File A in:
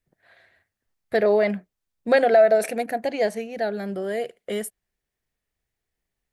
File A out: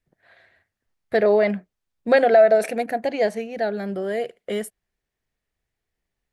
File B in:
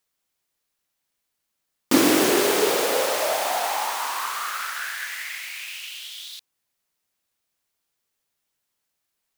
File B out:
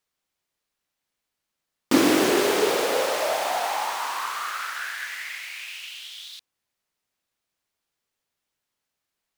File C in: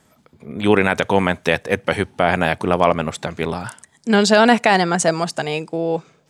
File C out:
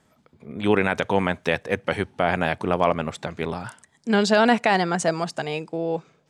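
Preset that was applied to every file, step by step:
high shelf 7500 Hz -8 dB; normalise peaks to -6 dBFS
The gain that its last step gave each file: +1.5, -0.5, -5.0 dB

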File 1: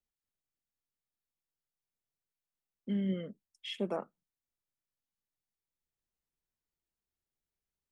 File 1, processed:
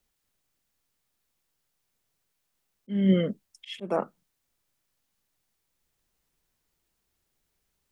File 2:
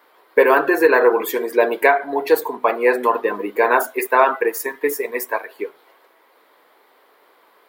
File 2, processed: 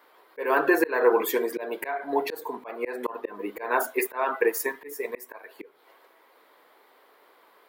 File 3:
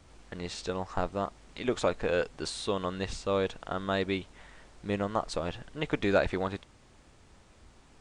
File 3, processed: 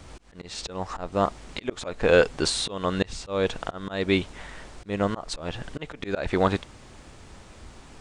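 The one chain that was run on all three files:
auto swell 0.3 s; match loudness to -27 LUFS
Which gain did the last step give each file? +15.0, -3.5, +11.0 dB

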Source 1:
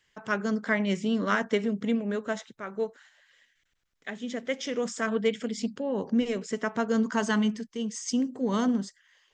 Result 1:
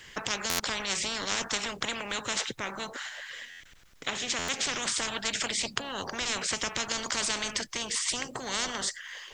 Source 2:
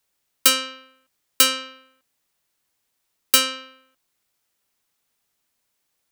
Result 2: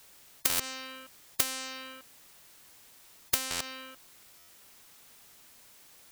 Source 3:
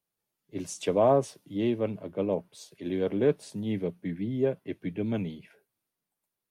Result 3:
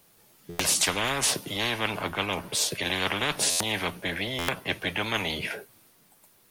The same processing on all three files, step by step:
stuck buffer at 0.49/3.5/4.38, samples 512, times 8; spectral compressor 10:1; normalise peaks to -9 dBFS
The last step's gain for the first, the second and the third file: +3.0, -8.0, +2.5 dB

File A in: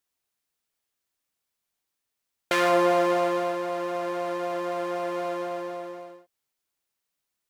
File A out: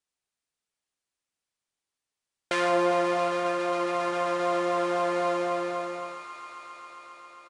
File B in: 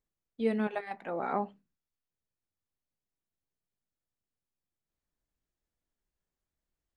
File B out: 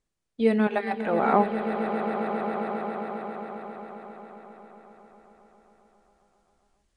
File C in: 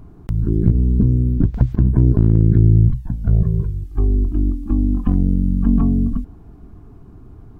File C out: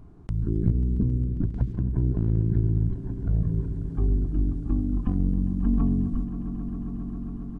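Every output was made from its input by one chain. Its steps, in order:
on a send: swelling echo 0.135 s, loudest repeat 5, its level -16 dB; on the sum: downsampling 22050 Hz; vocal rider within 4 dB 2 s; match loudness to -27 LUFS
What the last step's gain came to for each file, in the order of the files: 0.0, +10.5, -9.5 dB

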